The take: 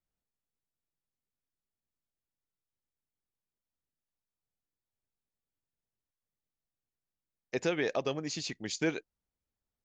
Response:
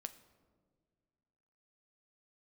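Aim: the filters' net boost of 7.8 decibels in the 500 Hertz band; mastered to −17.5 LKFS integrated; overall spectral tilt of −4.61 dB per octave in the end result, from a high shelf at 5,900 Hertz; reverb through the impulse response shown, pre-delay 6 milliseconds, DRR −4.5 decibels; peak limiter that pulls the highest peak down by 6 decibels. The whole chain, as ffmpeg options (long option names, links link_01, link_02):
-filter_complex "[0:a]equalizer=frequency=500:width_type=o:gain=9,highshelf=frequency=5900:gain=-5,alimiter=limit=-19.5dB:level=0:latency=1,asplit=2[link_01][link_02];[1:a]atrim=start_sample=2205,adelay=6[link_03];[link_02][link_03]afir=irnorm=-1:irlink=0,volume=8.5dB[link_04];[link_01][link_04]amix=inputs=2:normalize=0,volume=7.5dB"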